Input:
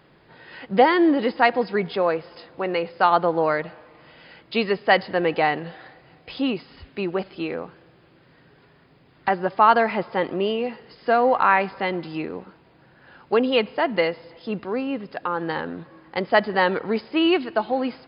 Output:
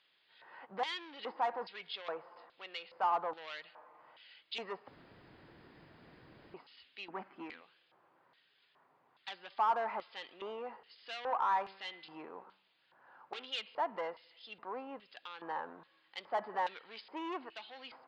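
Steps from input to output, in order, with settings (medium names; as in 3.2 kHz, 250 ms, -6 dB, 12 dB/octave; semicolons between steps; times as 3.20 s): 7.10–7.61 s: graphic EQ 250/500/2000/4000 Hz +11/-8/+7/-6 dB; saturation -19.5 dBFS, distortion -8 dB; LFO band-pass square 1.2 Hz 970–3400 Hz; 4.88–6.54 s: room tone; 11.62–13.46 s: de-hum 96.59 Hz, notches 36; trim -4 dB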